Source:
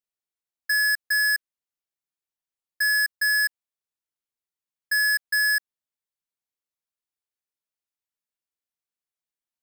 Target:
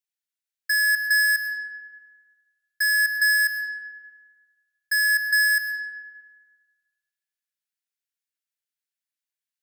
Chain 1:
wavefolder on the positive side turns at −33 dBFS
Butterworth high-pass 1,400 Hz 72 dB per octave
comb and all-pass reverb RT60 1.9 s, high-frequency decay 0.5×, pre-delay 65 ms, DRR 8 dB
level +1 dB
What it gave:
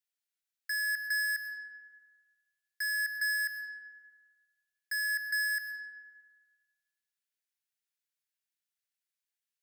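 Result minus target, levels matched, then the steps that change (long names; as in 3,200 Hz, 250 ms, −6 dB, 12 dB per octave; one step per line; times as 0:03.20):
wavefolder on the positive side: distortion +34 dB
change: wavefolder on the positive side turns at −21.5 dBFS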